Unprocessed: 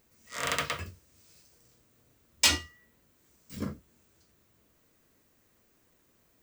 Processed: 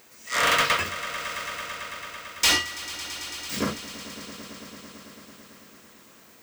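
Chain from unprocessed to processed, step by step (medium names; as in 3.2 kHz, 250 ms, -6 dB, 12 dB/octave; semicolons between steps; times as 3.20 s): overdrive pedal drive 28 dB, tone 7.6 kHz, clips at -7.5 dBFS; echo with a slow build-up 111 ms, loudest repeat 5, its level -17 dB; trim -4 dB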